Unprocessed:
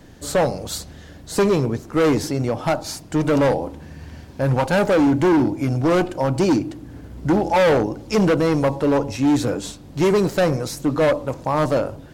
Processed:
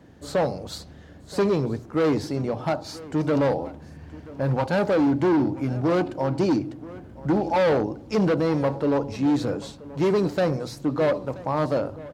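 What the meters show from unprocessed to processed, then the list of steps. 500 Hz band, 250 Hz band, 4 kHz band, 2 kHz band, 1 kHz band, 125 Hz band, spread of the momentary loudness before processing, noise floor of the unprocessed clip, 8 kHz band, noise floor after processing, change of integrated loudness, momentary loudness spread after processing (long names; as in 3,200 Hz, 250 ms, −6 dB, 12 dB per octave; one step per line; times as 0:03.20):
−4.5 dB, −4.0 dB, −6.5 dB, −6.5 dB, −5.0 dB, −4.5 dB, 13 LU, −41 dBFS, below −10 dB, −45 dBFS, −4.5 dB, 13 LU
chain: high-pass filter 59 Hz
high-shelf EQ 3,000 Hz −11.5 dB
mains-hum notches 60/120 Hz
on a send: single-tap delay 979 ms −19 dB
on the sum: dynamic equaliser 4,400 Hz, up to +7 dB, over −50 dBFS, Q 1.9
level −4 dB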